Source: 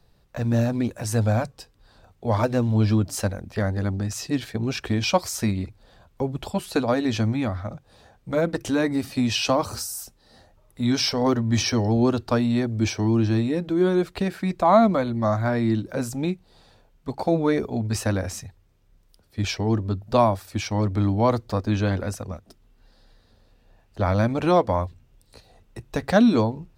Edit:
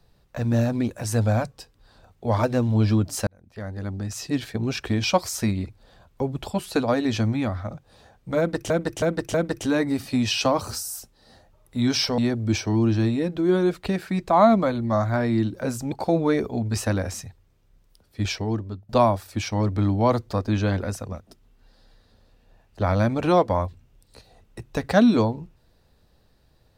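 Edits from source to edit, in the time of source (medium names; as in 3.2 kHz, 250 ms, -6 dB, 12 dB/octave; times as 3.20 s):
3.27–4.38 s: fade in
8.38–8.70 s: loop, 4 plays
11.22–12.50 s: delete
16.24–17.11 s: delete
19.44–20.08 s: fade out, to -14.5 dB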